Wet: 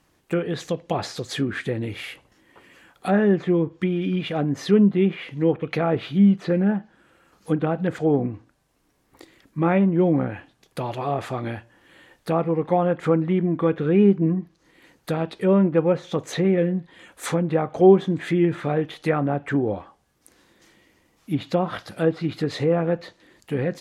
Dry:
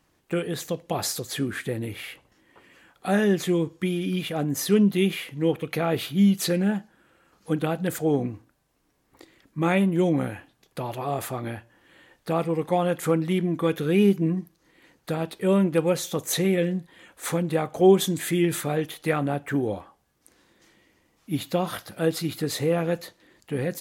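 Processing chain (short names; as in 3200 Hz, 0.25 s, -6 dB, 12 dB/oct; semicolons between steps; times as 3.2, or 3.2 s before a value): treble ducked by the level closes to 1600 Hz, closed at -21 dBFS; gain +3 dB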